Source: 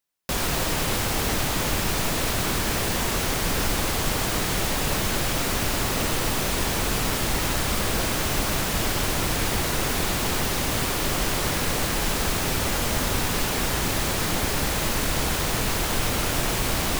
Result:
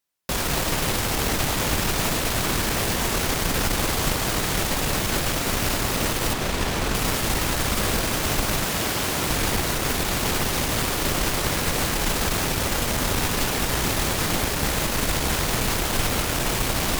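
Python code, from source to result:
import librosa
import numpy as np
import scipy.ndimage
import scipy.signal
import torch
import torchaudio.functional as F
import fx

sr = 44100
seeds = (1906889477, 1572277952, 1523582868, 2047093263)

y = fx.high_shelf(x, sr, hz=6700.0, db=-8.5, at=(6.33, 6.95))
y = fx.highpass(y, sr, hz=110.0, slope=6, at=(8.64, 9.3))
y = fx.tube_stage(y, sr, drive_db=13.0, bias=0.65)
y = F.gain(torch.from_numpy(y), 4.5).numpy()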